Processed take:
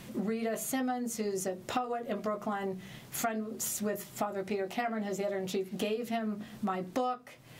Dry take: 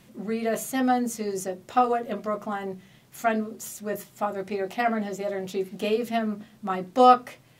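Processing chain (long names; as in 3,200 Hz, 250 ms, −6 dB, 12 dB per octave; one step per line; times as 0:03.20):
downward compressor 12 to 1, threshold −37 dBFS, peak gain reduction 26.5 dB
level +7 dB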